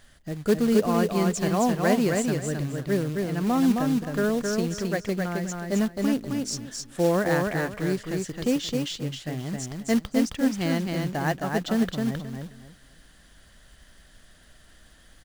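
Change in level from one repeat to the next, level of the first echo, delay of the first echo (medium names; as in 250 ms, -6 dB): -13.0 dB, -3.5 dB, 265 ms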